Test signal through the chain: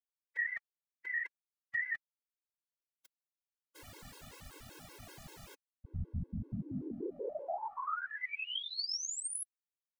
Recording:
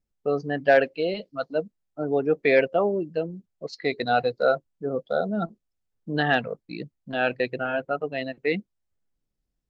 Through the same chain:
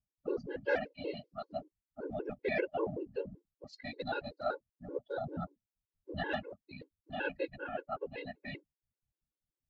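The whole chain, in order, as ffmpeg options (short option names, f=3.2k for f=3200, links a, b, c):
-af "afftfilt=real='hypot(re,im)*cos(2*PI*random(0))':imag='hypot(re,im)*sin(2*PI*random(1))':win_size=512:overlap=0.75,afftfilt=real='re*gt(sin(2*PI*5.2*pts/sr)*(1-2*mod(floor(b*sr/1024/280),2)),0)':imag='im*gt(sin(2*PI*5.2*pts/sr)*(1-2*mod(floor(b*sr/1024/280),2)),0)':win_size=1024:overlap=0.75,volume=-3.5dB"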